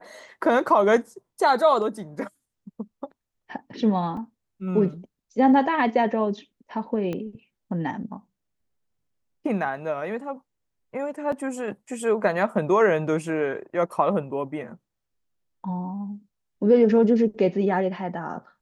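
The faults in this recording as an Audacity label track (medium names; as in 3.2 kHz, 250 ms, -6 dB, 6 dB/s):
4.170000	4.170000	dropout 2.8 ms
7.130000	7.130000	pop -19 dBFS
11.320000	11.320000	dropout 3.8 ms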